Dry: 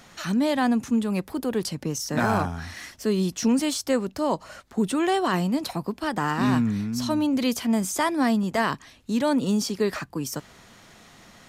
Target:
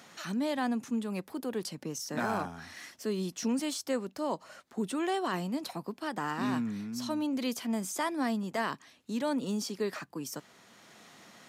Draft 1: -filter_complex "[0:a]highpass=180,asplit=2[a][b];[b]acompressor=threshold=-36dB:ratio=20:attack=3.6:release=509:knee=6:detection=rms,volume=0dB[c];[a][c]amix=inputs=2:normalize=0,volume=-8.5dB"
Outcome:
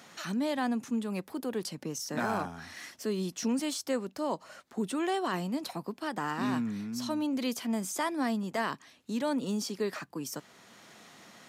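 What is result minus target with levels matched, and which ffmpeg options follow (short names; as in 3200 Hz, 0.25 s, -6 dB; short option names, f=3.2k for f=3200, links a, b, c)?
compressor: peak gain reduction -8 dB
-filter_complex "[0:a]highpass=180,asplit=2[a][b];[b]acompressor=threshold=-44.5dB:ratio=20:attack=3.6:release=509:knee=6:detection=rms,volume=0dB[c];[a][c]amix=inputs=2:normalize=0,volume=-8.5dB"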